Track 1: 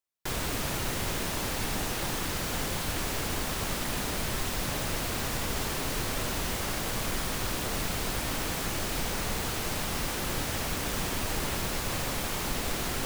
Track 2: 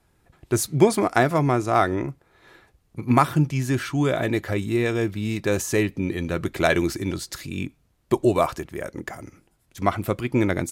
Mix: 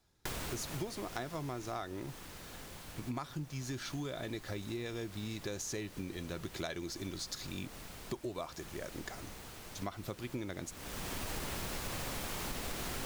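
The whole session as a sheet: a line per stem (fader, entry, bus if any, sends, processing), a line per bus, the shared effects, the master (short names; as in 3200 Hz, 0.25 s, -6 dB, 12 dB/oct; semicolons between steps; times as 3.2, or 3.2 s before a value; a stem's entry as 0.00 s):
+2.5 dB, 0.00 s, no send, auto duck -20 dB, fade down 2.00 s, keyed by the second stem
-10.5 dB, 0.00 s, no send, band shelf 4800 Hz +9 dB 1.2 oct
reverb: off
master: compressor 6:1, threshold -37 dBFS, peak gain reduction 16 dB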